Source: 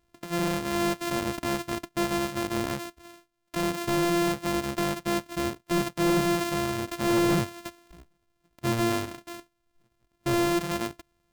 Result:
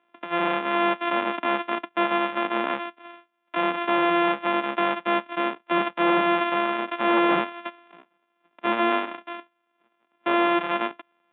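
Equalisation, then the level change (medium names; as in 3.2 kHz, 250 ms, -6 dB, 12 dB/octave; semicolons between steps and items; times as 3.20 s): steep high-pass 200 Hz 36 dB/octave; rippled Chebyshev low-pass 3.6 kHz, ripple 3 dB; peaking EQ 1.4 kHz +10.5 dB 2.9 oct; 0.0 dB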